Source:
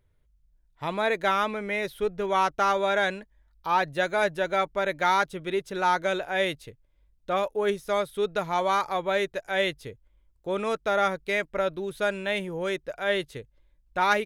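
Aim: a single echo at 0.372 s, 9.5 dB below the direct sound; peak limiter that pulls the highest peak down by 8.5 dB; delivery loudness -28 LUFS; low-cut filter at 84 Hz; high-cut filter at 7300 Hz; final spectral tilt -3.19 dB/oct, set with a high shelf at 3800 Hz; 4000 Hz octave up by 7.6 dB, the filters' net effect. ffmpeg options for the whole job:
-af "highpass=84,lowpass=7.3k,highshelf=f=3.8k:g=7.5,equalizer=f=4k:t=o:g=5,alimiter=limit=-14.5dB:level=0:latency=1,aecho=1:1:372:0.335,volume=-1.5dB"

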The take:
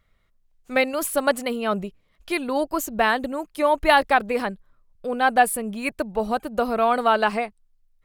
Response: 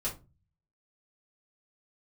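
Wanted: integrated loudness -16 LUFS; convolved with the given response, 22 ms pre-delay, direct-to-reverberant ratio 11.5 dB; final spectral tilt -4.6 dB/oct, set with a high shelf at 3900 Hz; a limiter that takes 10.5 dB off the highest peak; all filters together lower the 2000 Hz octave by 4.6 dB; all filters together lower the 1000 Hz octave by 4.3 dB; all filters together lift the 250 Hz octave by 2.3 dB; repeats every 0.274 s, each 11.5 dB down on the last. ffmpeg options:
-filter_complex "[0:a]equalizer=f=250:t=o:g=3,equalizer=f=1k:t=o:g=-5.5,equalizer=f=2k:t=o:g=-3,highshelf=f=3.9k:g=-4.5,alimiter=limit=-15.5dB:level=0:latency=1,aecho=1:1:274|548|822:0.266|0.0718|0.0194,asplit=2[a][b];[1:a]atrim=start_sample=2205,adelay=22[c];[b][c]afir=irnorm=-1:irlink=0,volume=-15dB[d];[a][d]amix=inputs=2:normalize=0,volume=11dB"

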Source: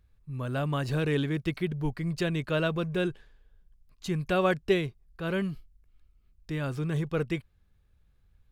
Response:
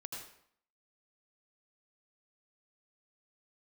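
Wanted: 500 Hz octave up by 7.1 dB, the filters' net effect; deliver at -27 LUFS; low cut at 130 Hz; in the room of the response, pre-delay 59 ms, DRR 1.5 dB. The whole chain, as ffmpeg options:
-filter_complex "[0:a]highpass=130,equalizer=f=500:t=o:g=9,asplit=2[a][b];[1:a]atrim=start_sample=2205,adelay=59[c];[b][c]afir=irnorm=-1:irlink=0,volume=0.5dB[d];[a][d]amix=inputs=2:normalize=0,volume=-3dB"

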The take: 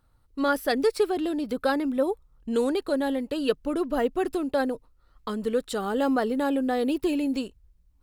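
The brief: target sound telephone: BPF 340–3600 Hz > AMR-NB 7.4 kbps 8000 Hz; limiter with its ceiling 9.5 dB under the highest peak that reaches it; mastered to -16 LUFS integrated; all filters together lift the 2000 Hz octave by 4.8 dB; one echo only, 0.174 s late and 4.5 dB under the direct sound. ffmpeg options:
-af "equalizer=f=2k:t=o:g=7,alimiter=limit=-20dB:level=0:latency=1,highpass=340,lowpass=3.6k,aecho=1:1:174:0.596,volume=15.5dB" -ar 8000 -c:a libopencore_amrnb -b:a 7400

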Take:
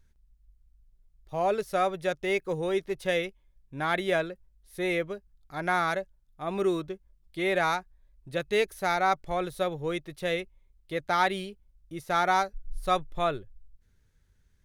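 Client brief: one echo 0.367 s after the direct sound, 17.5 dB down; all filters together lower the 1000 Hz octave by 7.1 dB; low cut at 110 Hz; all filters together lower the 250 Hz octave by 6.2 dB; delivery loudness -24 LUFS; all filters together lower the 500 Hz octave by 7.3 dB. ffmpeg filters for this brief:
-af "highpass=110,equalizer=f=250:t=o:g=-7,equalizer=f=500:t=o:g=-5,equalizer=f=1k:t=o:g=-8,aecho=1:1:367:0.133,volume=10.5dB"

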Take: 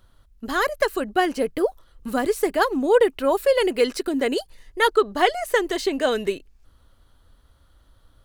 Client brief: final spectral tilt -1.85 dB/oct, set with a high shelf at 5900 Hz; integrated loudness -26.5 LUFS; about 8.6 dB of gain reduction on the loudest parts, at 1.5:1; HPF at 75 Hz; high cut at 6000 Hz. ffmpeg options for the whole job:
-af "highpass=75,lowpass=6k,highshelf=f=5.9k:g=-9,acompressor=threshold=-38dB:ratio=1.5,volume=3.5dB"

